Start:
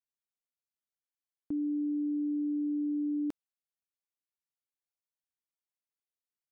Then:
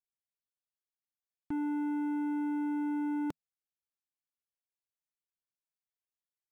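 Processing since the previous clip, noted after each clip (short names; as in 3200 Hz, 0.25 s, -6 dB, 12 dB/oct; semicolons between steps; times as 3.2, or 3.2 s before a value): EQ curve 160 Hz 0 dB, 240 Hz -8 dB, 890 Hz -6 dB; sample leveller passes 3; gain +2.5 dB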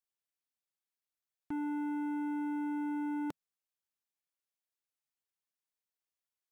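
low shelf 260 Hz -6.5 dB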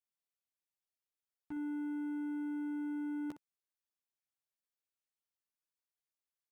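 early reflections 13 ms -4.5 dB, 61 ms -11 dB; gain -7 dB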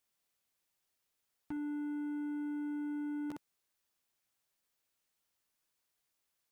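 limiter -45.5 dBFS, peak gain reduction 11 dB; gain +11 dB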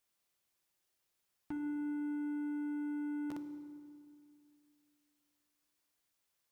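reverb RT60 2.2 s, pre-delay 3 ms, DRR 7 dB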